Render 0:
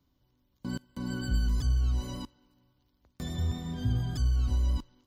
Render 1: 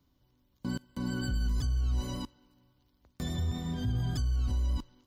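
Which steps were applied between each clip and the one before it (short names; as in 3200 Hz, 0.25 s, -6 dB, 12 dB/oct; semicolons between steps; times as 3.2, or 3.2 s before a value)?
limiter -25 dBFS, peak gain reduction 8 dB; gain +1.5 dB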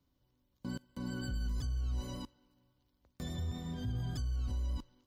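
bell 530 Hz +4 dB 0.25 oct; gain -6 dB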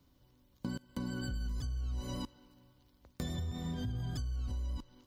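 compressor 6:1, threshold -44 dBFS, peak gain reduction 11 dB; gain +9 dB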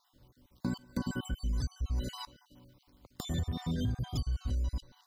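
random spectral dropouts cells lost 36%; gain +5.5 dB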